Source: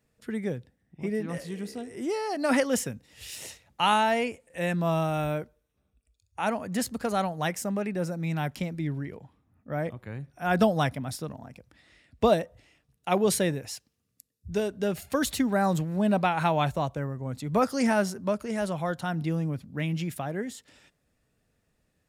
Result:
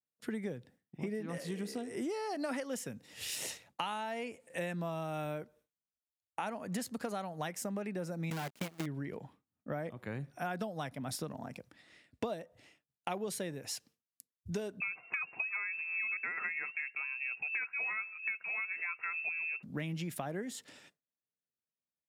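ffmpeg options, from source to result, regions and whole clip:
-filter_complex "[0:a]asettb=1/sr,asplit=3[a][b][c];[a]atrim=end=8.304[d];[b]atrim=start=8.3:end=8.86,asetpts=PTS-STARTPTS,afade=t=in:d=0.004:c=qsin,afade=t=out:st=0.556:d=0.004:c=qsin,agate=range=-12dB:threshold=-33dB:ratio=16:release=100:detection=peak,acrusher=bits=6:dc=4:mix=0:aa=0.000001[e];[c]atrim=start=8.856[f];[d][e]acrossfade=d=0.004:c1=hsin:c2=qsin[g];[g][f]acrossfade=d=0.004:c1=qsin:c2=hsin,asettb=1/sr,asplit=3[h][i][j];[h]atrim=end=14.804[k];[i]atrim=start=14.8:end=19.63,asetpts=PTS-STARTPTS,afade=t=in:d=0.004:c=qsin,afade=t=out:st=4.826:d=0.004:c=qsin,aecho=1:1:3.4:0.33,atrim=end_sample=213003,lowpass=f=2.4k:t=q:w=0.5098,lowpass=f=2.4k:t=q:w=0.6013,lowpass=f=2.4k:t=q:w=0.9,lowpass=f=2.4k:t=q:w=2.563,afreqshift=-2800[l];[j]atrim=start=19.626[m];[k][l]acrossfade=d=0.004:c1=hsin:c2=qsin[n];[n][m]acrossfade=d=0.004:c1=qsin:c2=hsin,highpass=150,agate=range=-33dB:threshold=-55dB:ratio=3:detection=peak,acompressor=threshold=-37dB:ratio=12,volume=2.5dB"

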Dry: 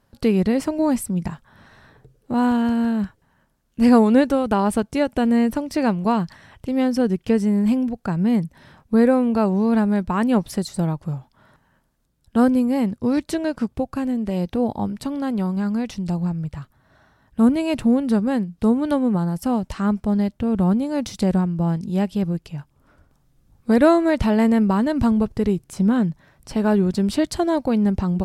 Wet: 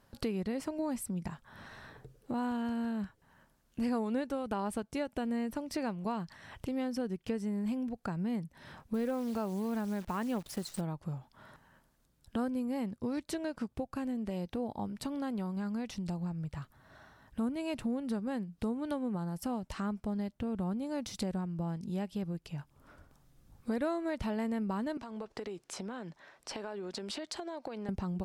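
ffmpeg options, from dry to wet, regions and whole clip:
-filter_complex "[0:a]asettb=1/sr,asplit=3[a][b][c];[a]atrim=end=8.944[d];[b]atrim=start=8.94:end=10.81,asetpts=PTS-STARTPTS,afade=t=in:d=0.004:c=qsin,afade=t=out:st=1.866:d=0.004:c=qsin,acrusher=bits=7:dc=4:mix=0:aa=0.000001,asoftclip=type=hard:threshold=-8.5dB[e];[c]atrim=start=10.806[f];[d][e]acrossfade=d=0.004:c1=hsin:c2=qsin[g];[g][f]acrossfade=d=0.004:c1=qsin:c2=hsin,asettb=1/sr,asplit=3[h][i][j];[h]atrim=end=24.974[k];[i]atrim=start=24.97:end=27.89,asetpts=PTS-STARTPTS,afade=t=in:d=0.004:c=qsin,afade=t=out:st=2.916:d=0.004:c=qsin,acrossover=split=320 7900:gain=0.0891 1 0.158[l][m][n];[l][m][n]amix=inputs=3:normalize=0,acompressor=threshold=-30dB:ratio=10:attack=3.2:release=140:knee=1:detection=peak[o];[j]atrim=start=27.886[p];[k][o]acrossfade=d=0.004:c1=hsin:c2=qsin[q];[q][p]acrossfade=d=0.004:c1=qsin:c2=hsin,lowshelf=f=350:g=-3.5,acompressor=threshold=-39dB:ratio=2.5"

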